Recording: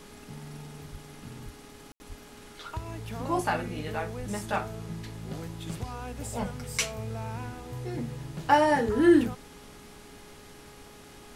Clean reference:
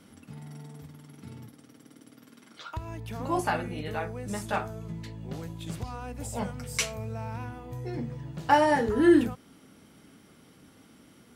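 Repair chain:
hum removal 415 Hz, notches 28
high-pass at the plosives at 0:00.91/0:01.44/0:02.08/0:04.18/0:06.40
ambience match 0:01.92–0:02.00
noise reduction from a noise print 7 dB

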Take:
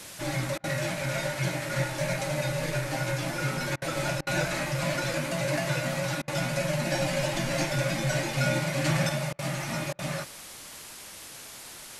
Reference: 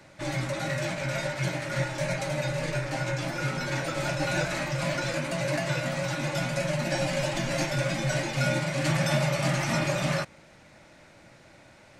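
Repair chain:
repair the gap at 0:00.58/0:03.76/0:04.21/0:06.22/0:09.33/0:09.93, 57 ms
noise reduction from a noise print 9 dB
level 0 dB, from 0:09.09 +5.5 dB

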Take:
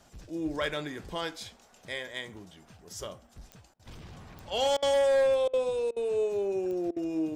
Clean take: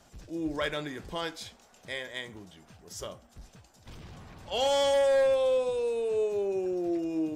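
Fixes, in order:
click removal
repair the gap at 0:03.74/0:04.77/0:05.48/0:05.91/0:06.91, 53 ms

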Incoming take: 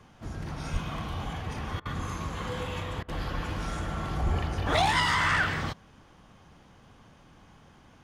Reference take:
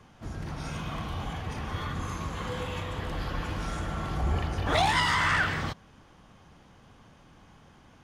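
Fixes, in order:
0:00.72–0:00.84: high-pass filter 140 Hz 24 dB per octave
0:04.25–0:04.37: high-pass filter 140 Hz 24 dB per octave
repair the gap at 0:01.80/0:03.03, 53 ms

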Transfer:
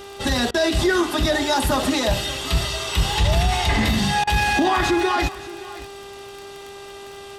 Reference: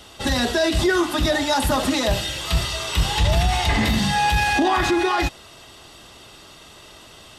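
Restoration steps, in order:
click removal
hum removal 398 Hz, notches 32
repair the gap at 0:00.51/0:04.24, 31 ms
echo removal 570 ms −17.5 dB

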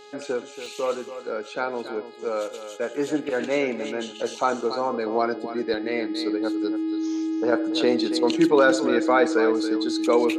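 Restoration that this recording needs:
hum removal 416.8 Hz, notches 12
notch filter 320 Hz, Q 30
repair the gap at 0:00.66/0:05.74, 1.6 ms
echo removal 281 ms −11.5 dB

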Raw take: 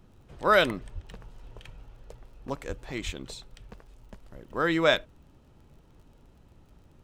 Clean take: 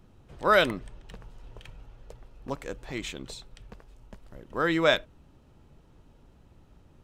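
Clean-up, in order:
click removal
0:00.94–0:01.06: high-pass filter 140 Hz 24 dB per octave
0:02.68–0:02.80: high-pass filter 140 Hz 24 dB per octave
0:03.05–0:03.17: high-pass filter 140 Hz 24 dB per octave

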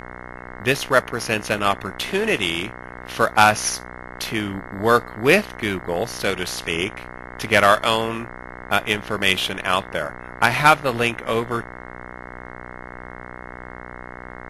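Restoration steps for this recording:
hum removal 61.6 Hz, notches 35
downward expander −30 dBFS, range −21 dB

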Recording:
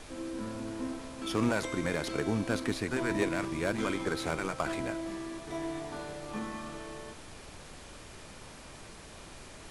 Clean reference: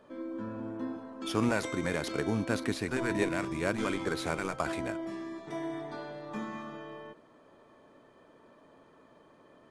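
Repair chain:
clipped peaks rebuilt −19.5 dBFS
notch filter 2,400 Hz, Q 30
noise reduction from a noise print 11 dB

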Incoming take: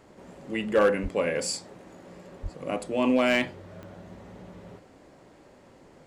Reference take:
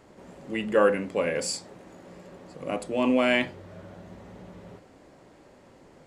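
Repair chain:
clipped peaks rebuilt −14 dBFS
click removal
0:01.02–0:01.14: high-pass filter 140 Hz 24 dB per octave
0:02.42–0:02.54: high-pass filter 140 Hz 24 dB per octave

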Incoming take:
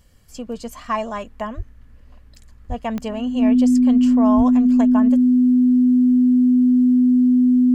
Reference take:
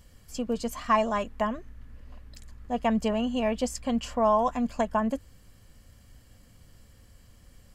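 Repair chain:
click removal
notch filter 250 Hz, Q 30
high-pass at the plosives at 0:01.56/0:02.68/0:04.36

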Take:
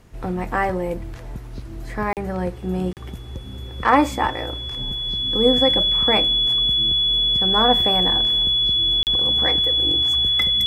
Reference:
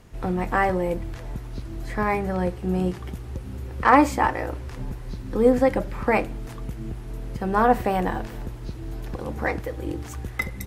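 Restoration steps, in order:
notch filter 3,400 Hz, Q 30
repair the gap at 0:02.13/0:02.93/0:09.03, 38 ms

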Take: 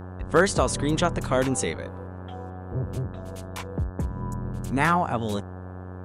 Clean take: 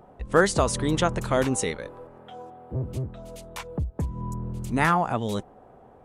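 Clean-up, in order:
clipped peaks rebuilt −8 dBFS
hum removal 91.6 Hz, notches 19

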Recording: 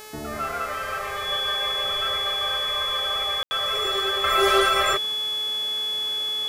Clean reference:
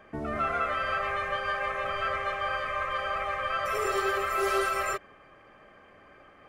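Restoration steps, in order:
hum removal 429.3 Hz, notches 36
notch filter 3,400 Hz, Q 30
ambience match 0:03.43–0:03.51
level correction −7.5 dB, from 0:04.24

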